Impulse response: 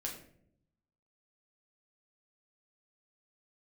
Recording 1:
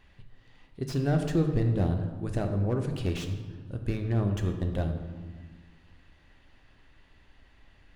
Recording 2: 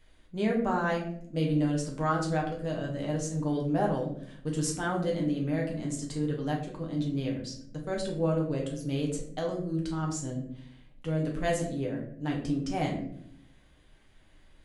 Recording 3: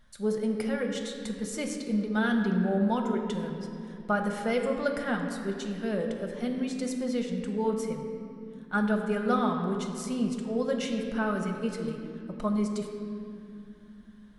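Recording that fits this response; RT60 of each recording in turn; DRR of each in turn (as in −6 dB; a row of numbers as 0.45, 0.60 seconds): 2; 1.5, 0.70, 2.9 seconds; 4.0, −1.5, 2.0 decibels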